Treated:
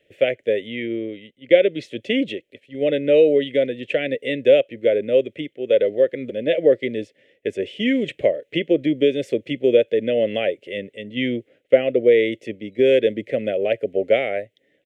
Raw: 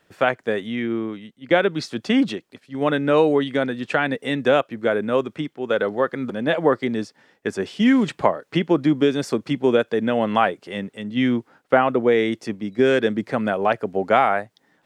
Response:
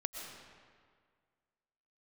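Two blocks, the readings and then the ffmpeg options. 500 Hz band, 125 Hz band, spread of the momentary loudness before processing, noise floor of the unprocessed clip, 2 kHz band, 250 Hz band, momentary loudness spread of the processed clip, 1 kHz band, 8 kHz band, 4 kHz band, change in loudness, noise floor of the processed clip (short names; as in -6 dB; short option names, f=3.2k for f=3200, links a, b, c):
+3.5 dB, -5.5 dB, 10 LU, -65 dBFS, -3.0 dB, -3.5 dB, 14 LU, under -10 dB, n/a, +0.5 dB, +1.0 dB, -66 dBFS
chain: -af "firequalizer=gain_entry='entry(110,0);entry(180,-6);entry(300,1);entry(560,10);entry(900,-29);entry(1300,-21);entry(2000,5);entry(3100,6);entry(4600,-12);entry(6800,-7)':delay=0.05:min_phase=1,volume=-3dB"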